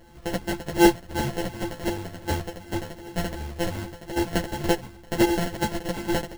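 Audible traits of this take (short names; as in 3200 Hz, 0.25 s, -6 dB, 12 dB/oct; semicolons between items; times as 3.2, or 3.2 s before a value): a buzz of ramps at a fixed pitch in blocks of 128 samples; phasing stages 2, 2.7 Hz, lowest notch 170–1600 Hz; aliases and images of a low sample rate 1200 Hz, jitter 0%; a shimmering, thickened sound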